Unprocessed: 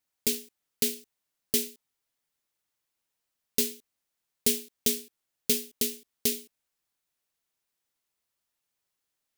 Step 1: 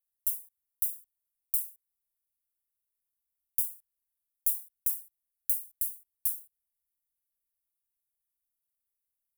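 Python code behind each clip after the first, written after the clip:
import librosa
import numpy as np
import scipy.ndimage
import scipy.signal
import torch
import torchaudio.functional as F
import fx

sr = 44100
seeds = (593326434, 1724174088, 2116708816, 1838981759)

y = scipy.signal.sosfilt(scipy.signal.cheby2(4, 80, [350.0, 2300.0], 'bandstop', fs=sr, output='sos'), x)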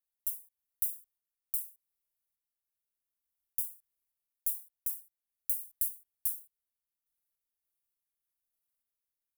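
y = fx.tremolo_random(x, sr, seeds[0], hz=3.4, depth_pct=55)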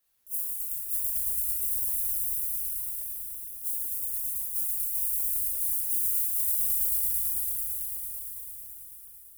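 y = fx.echo_swell(x, sr, ms=111, loudest=5, wet_db=-17.0)
y = fx.over_compress(y, sr, threshold_db=-42.0, ratio=-0.5)
y = fx.rev_shimmer(y, sr, seeds[1], rt60_s=1.7, semitones=7, shimmer_db=-8, drr_db=-4.5)
y = y * 10.0 ** (9.0 / 20.0)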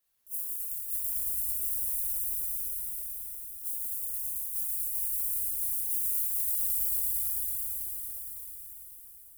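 y = x + 10.0 ** (-6.0 / 20.0) * np.pad(x, (int(169 * sr / 1000.0), 0))[:len(x)]
y = y * 10.0 ** (-3.5 / 20.0)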